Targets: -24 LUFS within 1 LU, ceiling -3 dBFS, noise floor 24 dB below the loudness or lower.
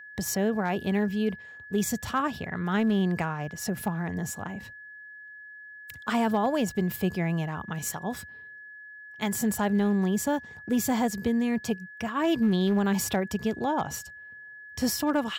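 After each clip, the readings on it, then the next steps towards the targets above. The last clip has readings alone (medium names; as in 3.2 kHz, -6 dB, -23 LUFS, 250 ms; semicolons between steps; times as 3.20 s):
clipped samples 0.4%; clipping level -18.0 dBFS; steady tone 1.7 kHz; tone level -43 dBFS; loudness -28.0 LUFS; peak level -18.0 dBFS; loudness target -24.0 LUFS
-> clip repair -18 dBFS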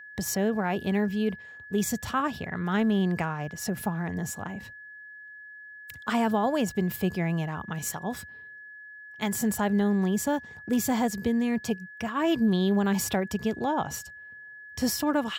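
clipped samples 0.0%; steady tone 1.7 kHz; tone level -43 dBFS
-> band-stop 1.7 kHz, Q 30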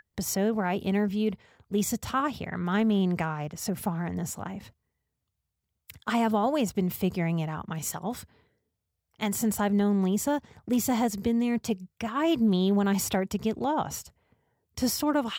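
steady tone not found; loudness -28.0 LUFS; peak level -14.5 dBFS; loudness target -24.0 LUFS
-> trim +4 dB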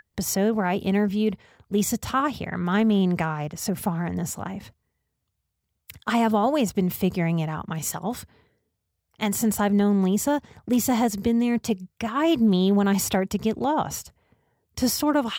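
loudness -24.0 LUFS; peak level -10.5 dBFS; noise floor -79 dBFS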